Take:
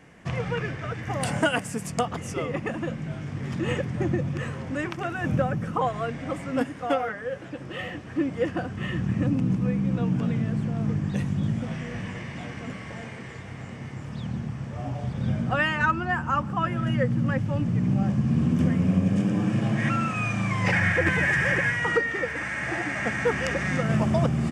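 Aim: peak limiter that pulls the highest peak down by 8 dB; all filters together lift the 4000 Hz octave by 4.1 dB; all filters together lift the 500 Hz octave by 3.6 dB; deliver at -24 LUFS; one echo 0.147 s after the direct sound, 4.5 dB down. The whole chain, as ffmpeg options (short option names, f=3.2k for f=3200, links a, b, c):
-af "equalizer=f=500:t=o:g=4,equalizer=f=4k:t=o:g=6.5,alimiter=limit=-14.5dB:level=0:latency=1,aecho=1:1:147:0.596,volume=1dB"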